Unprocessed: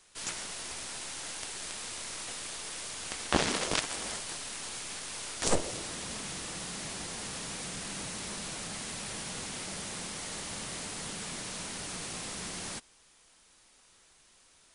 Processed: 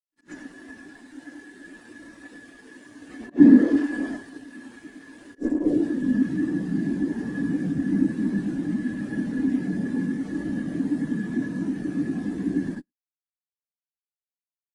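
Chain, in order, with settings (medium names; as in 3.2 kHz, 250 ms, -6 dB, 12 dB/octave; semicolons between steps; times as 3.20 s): short-time spectra conjugated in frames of 202 ms; treble shelf 2.5 kHz -7 dB; fuzz box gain 52 dB, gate -49 dBFS; small resonant body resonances 280/1700 Hz, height 11 dB, ringing for 35 ms; slow attack 112 ms; on a send: delay 108 ms -21.5 dB; on the sum: spectral contrast expander 2.5:1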